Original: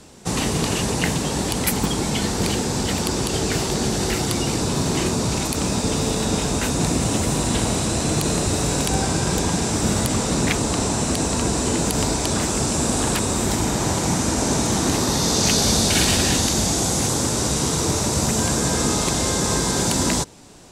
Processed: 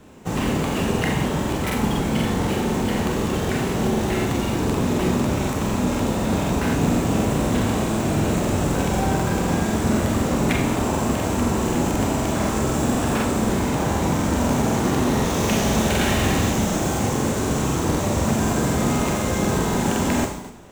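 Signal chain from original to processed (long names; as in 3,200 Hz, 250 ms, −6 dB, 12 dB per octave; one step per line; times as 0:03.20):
running median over 9 samples
four-comb reverb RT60 0.84 s, combs from 29 ms, DRR 0 dB
regular buffer underruns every 0.25 s, samples 2,048, repeat, from 0:00.65
level −1.5 dB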